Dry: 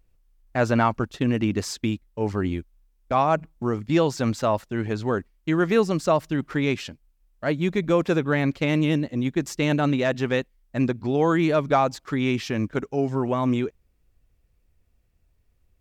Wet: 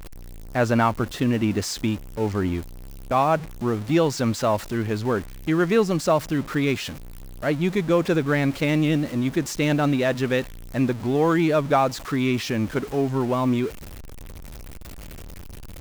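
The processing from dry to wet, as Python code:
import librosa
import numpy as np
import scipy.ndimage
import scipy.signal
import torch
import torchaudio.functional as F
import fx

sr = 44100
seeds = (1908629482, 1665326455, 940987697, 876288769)

y = x + 0.5 * 10.0 ** (-32.0 / 20.0) * np.sign(x)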